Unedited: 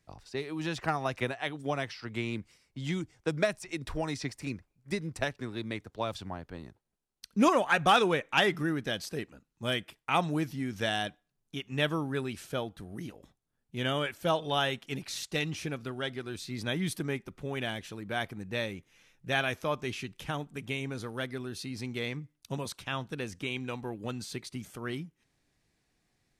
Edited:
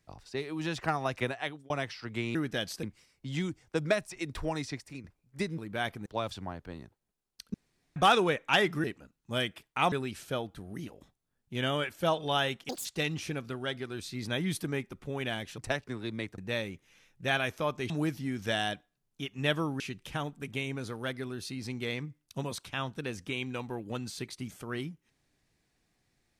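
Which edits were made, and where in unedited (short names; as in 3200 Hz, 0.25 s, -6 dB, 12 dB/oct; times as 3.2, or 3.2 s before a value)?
1.42–1.7 fade out
4.07–4.56 fade out, to -10.5 dB
5.1–5.9 swap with 17.94–18.42
7.38–7.8 room tone
8.68–9.16 move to 2.35
10.24–12.14 move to 19.94
14.91–15.21 speed 187%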